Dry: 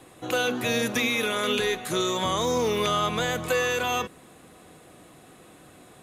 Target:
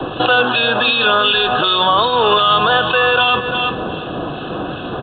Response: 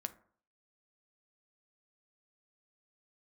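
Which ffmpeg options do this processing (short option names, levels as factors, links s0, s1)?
-filter_complex "[0:a]adynamicequalizer=threshold=0.00158:dfrequency=120:dqfactor=7.8:tfrequency=120:tqfactor=7.8:attack=5:release=100:ratio=0.375:range=2:mode=boostabove:tftype=bell,asuperstop=centerf=2100:order=12:qfactor=2.5,acrossover=split=650[s0][s1];[s0]acompressor=threshold=0.0112:ratio=16[s2];[s2][s1]amix=inputs=2:normalize=0,atempo=1.2,acrusher=bits=8:mode=log:mix=0:aa=0.000001,acrossover=split=1600[s3][s4];[s3]aeval=exprs='val(0)*(1-0.5/2+0.5/2*cos(2*PI*2.6*n/s))':c=same[s5];[s4]aeval=exprs='val(0)*(1-0.5/2-0.5/2*cos(2*PI*2.6*n/s))':c=same[s6];[s5][s6]amix=inputs=2:normalize=0,aecho=1:1:346|692:0.141|0.0254,asplit=2[s7][s8];[1:a]atrim=start_sample=2205,asetrate=29106,aresample=44100[s9];[s8][s9]afir=irnorm=-1:irlink=0,volume=0.237[s10];[s7][s10]amix=inputs=2:normalize=0,acrossover=split=180|360[s11][s12][s13];[s11]acompressor=threshold=0.00112:ratio=4[s14];[s12]acompressor=threshold=0.00141:ratio=4[s15];[s13]acompressor=threshold=0.0158:ratio=4[s16];[s14][s15][s16]amix=inputs=3:normalize=0,alimiter=level_in=37.6:limit=0.891:release=50:level=0:latency=1,volume=0.708" -ar 8000 -c:a adpcm_g726 -b:a 40k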